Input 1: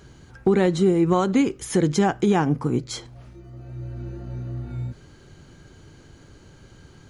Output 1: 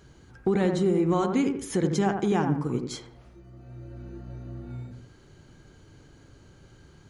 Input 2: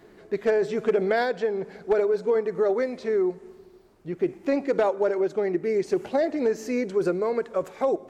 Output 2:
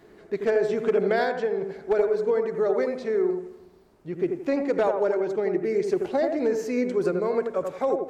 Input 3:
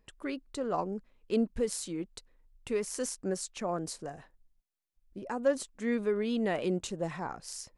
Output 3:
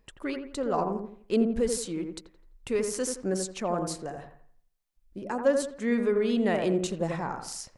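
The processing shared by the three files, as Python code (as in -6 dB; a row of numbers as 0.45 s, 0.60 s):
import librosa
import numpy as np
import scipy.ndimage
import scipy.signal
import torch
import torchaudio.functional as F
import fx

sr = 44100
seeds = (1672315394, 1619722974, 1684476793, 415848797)

y = fx.echo_wet_lowpass(x, sr, ms=85, feedback_pct=33, hz=1700.0, wet_db=-5)
y = y * 10.0 ** (-12 / 20.0) / np.max(np.abs(y))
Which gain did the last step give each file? -6.0 dB, -1.0 dB, +3.5 dB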